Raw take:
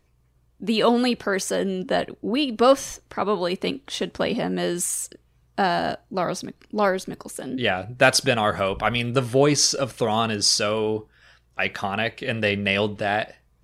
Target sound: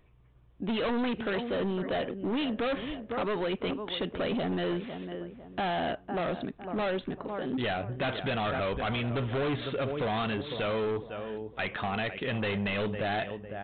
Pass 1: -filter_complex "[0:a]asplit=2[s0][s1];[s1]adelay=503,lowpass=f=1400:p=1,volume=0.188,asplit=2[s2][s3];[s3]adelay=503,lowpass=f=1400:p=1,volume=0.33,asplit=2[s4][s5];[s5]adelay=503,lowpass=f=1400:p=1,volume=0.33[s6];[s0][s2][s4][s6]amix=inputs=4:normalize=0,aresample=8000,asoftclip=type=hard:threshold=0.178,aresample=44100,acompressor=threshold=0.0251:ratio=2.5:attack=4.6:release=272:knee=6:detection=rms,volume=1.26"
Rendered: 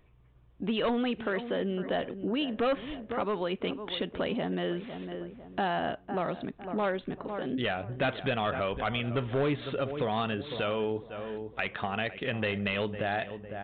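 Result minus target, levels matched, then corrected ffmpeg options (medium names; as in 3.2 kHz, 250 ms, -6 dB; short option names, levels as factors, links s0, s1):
hard clipper: distortion -8 dB
-filter_complex "[0:a]asplit=2[s0][s1];[s1]adelay=503,lowpass=f=1400:p=1,volume=0.188,asplit=2[s2][s3];[s3]adelay=503,lowpass=f=1400:p=1,volume=0.33,asplit=2[s4][s5];[s5]adelay=503,lowpass=f=1400:p=1,volume=0.33[s6];[s0][s2][s4][s6]amix=inputs=4:normalize=0,aresample=8000,asoftclip=type=hard:threshold=0.0596,aresample=44100,acompressor=threshold=0.0251:ratio=2.5:attack=4.6:release=272:knee=6:detection=rms,volume=1.26"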